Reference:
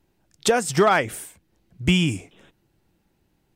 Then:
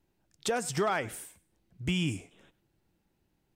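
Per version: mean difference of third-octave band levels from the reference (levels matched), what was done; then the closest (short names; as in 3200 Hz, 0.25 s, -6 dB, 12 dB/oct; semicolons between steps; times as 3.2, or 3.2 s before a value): 2.5 dB: limiter -13.5 dBFS, peak gain reduction 4.5 dB; on a send: thinning echo 99 ms, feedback 24%, level -20 dB; on the sum: gain -7.5 dB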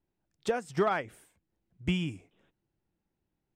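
4.5 dB: high shelf 4300 Hz -10.5 dB; upward expander 1.5:1, over -27 dBFS; gain -8.5 dB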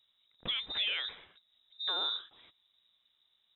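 16.5 dB: limiter -19 dBFS, peak gain reduction 10 dB; inverted band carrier 3800 Hz; gain -7 dB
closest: first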